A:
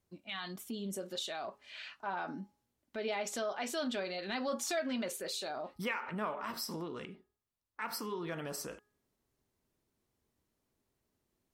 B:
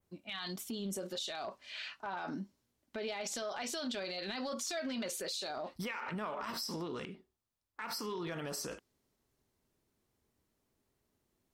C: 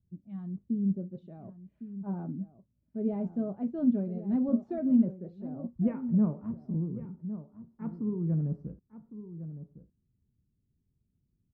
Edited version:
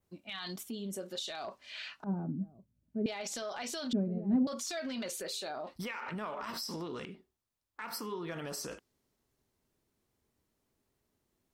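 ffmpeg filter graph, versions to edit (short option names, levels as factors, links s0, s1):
-filter_complex "[0:a]asplit=3[s0][s1][s2];[2:a]asplit=2[s3][s4];[1:a]asplit=6[s5][s6][s7][s8][s9][s10];[s5]atrim=end=0.632[s11];[s0]atrim=start=0.628:end=1.202[s12];[s6]atrim=start=1.198:end=2.042[s13];[s3]atrim=start=2.038:end=3.062[s14];[s7]atrim=start=3.058:end=3.932[s15];[s4]atrim=start=3.928:end=4.472[s16];[s8]atrim=start=4.468:end=5.232[s17];[s1]atrim=start=5.228:end=5.672[s18];[s9]atrim=start=5.668:end=7.892[s19];[s2]atrim=start=7.888:end=8.312[s20];[s10]atrim=start=8.308[s21];[s11][s12]acrossfade=d=0.004:c1=hsin:c2=hsin[s22];[s22][s13]acrossfade=d=0.004:c1=hsin:c2=hsin[s23];[s23][s14]acrossfade=d=0.004:c1=hsin:c2=hsin[s24];[s24][s15]acrossfade=d=0.004:c1=hsin:c2=hsin[s25];[s25][s16]acrossfade=d=0.004:c1=hsin:c2=hsin[s26];[s26][s17]acrossfade=d=0.004:c1=hsin:c2=hsin[s27];[s27][s18]acrossfade=d=0.004:c1=hsin:c2=hsin[s28];[s28][s19]acrossfade=d=0.004:c1=hsin:c2=hsin[s29];[s29][s20]acrossfade=d=0.004:c1=hsin:c2=hsin[s30];[s30][s21]acrossfade=d=0.004:c1=hsin:c2=hsin"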